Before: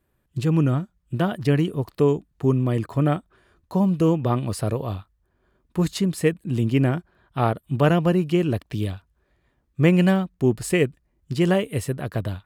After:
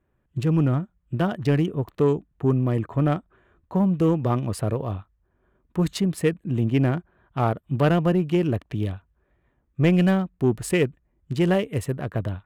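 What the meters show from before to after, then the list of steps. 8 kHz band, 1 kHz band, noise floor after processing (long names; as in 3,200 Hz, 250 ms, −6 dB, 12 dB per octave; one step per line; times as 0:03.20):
−2.5 dB, −1.0 dB, −70 dBFS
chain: adaptive Wiener filter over 9 samples
soft clipping −10 dBFS, distortion −22 dB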